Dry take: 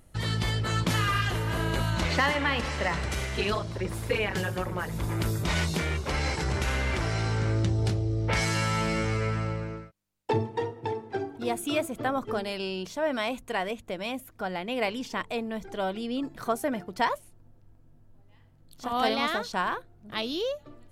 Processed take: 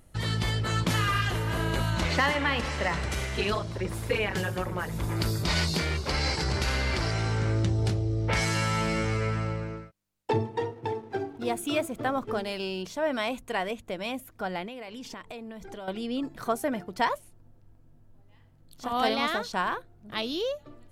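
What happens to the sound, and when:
0:05.16–0:07.11: parametric band 4,600 Hz +11 dB 0.35 octaves
0:10.72–0:12.82: slack as between gear wheels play −51 dBFS
0:14.67–0:15.88: downward compressor 16 to 1, threshold −36 dBFS

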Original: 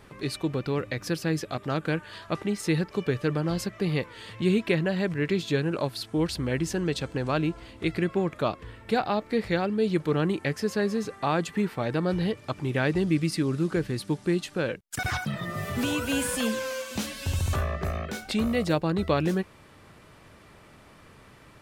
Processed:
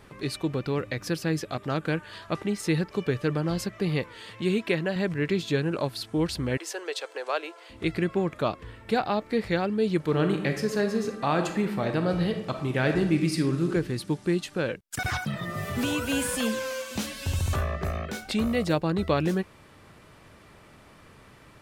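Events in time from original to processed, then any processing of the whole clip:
0:04.17–0:04.96: low-shelf EQ 130 Hz −10.5 dB
0:06.57–0:07.70: Butterworth high-pass 430 Hz
0:09.97–0:13.69: thrown reverb, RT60 0.86 s, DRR 5.5 dB

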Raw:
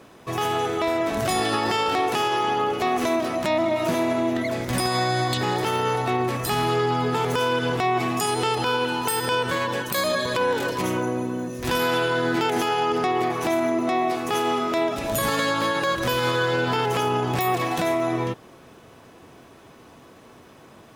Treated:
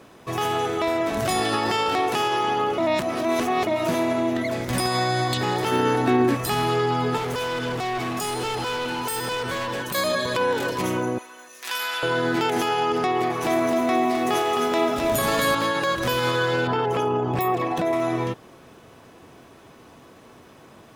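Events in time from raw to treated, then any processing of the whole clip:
0:02.78–0:03.67: reverse
0:05.71–0:06.35: hollow resonant body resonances 280/1,600 Hz, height 15 dB
0:07.17–0:09.95: hard clipping −24.5 dBFS
0:11.18–0:12.03: high-pass filter 1,300 Hz
0:13.21–0:15.55: feedback echo at a low word length 262 ms, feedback 35%, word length 8 bits, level −4 dB
0:16.67–0:17.93: spectral envelope exaggerated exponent 1.5

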